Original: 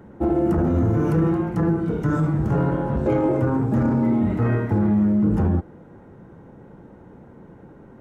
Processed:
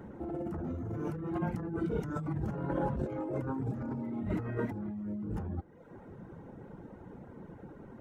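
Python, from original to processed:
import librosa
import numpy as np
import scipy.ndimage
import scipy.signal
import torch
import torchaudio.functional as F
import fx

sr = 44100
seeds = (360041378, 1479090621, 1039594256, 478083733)

y = fx.dereverb_blind(x, sr, rt60_s=0.7)
y = fx.over_compress(y, sr, threshold_db=-28.0, ratio=-1.0)
y = y * 10.0 ** (-7.5 / 20.0)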